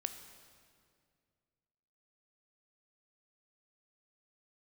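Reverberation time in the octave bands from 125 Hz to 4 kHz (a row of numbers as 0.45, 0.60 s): 2.7, 2.5, 2.3, 2.0, 1.9, 1.7 s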